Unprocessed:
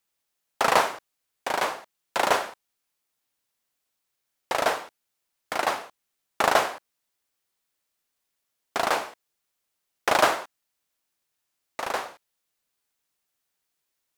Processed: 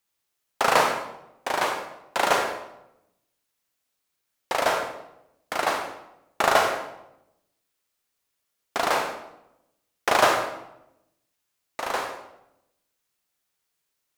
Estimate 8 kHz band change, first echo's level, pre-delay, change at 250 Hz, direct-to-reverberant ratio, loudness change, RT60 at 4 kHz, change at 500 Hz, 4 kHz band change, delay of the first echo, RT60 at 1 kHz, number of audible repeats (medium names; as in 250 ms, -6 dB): +1.5 dB, no echo, 30 ms, +1.5 dB, 3.5 dB, +1.0 dB, 0.65 s, +1.5 dB, +1.5 dB, no echo, 0.80 s, no echo